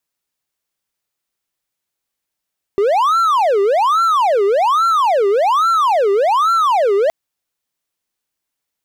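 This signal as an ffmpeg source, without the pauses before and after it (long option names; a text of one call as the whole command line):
ffmpeg -f lavfi -i "aevalsrc='0.355*(1-4*abs(mod((876.5*t-483.5/(2*PI*1.2)*sin(2*PI*1.2*t))+0.25,1)-0.5))':duration=4.32:sample_rate=44100" out.wav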